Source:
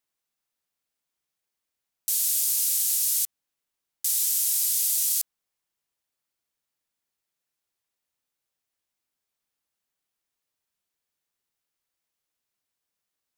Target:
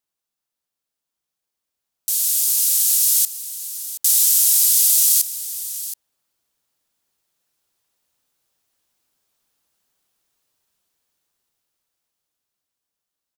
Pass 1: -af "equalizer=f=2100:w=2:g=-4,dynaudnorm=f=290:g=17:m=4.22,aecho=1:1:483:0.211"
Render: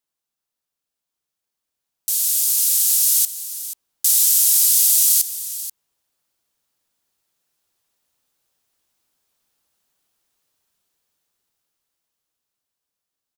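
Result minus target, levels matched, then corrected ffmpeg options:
echo 240 ms early
-af "equalizer=f=2100:w=2:g=-4,dynaudnorm=f=290:g=17:m=4.22,aecho=1:1:723:0.211"

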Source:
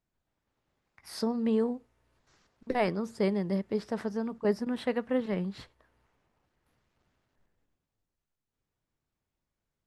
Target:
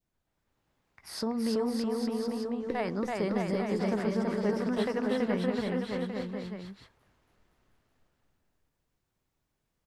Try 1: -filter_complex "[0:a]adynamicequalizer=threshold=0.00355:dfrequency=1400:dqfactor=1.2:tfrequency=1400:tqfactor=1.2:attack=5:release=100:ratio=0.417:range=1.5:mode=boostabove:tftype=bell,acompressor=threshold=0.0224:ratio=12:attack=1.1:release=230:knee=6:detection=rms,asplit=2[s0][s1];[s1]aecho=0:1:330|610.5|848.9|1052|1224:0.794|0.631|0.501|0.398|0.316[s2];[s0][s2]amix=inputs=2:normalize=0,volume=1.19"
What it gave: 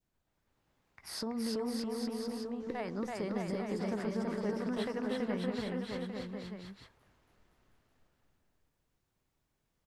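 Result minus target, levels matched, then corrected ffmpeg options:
compression: peak gain reduction +7 dB
-filter_complex "[0:a]adynamicequalizer=threshold=0.00355:dfrequency=1400:dqfactor=1.2:tfrequency=1400:tqfactor=1.2:attack=5:release=100:ratio=0.417:range=1.5:mode=boostabove:tftype=bell,acompressor=threshold=0.0531:ratio=12:attack=1.1:release=230:knee=6:detection=rms,asplit=2[s0][s1];[s1]aecho=0:1:330|610.5|848.9|1052|1224:0.794|0.631|0.501|0.398|0.316[s2];[s0][s2]amix=inputs=2:normalize=0,volume=1.19"

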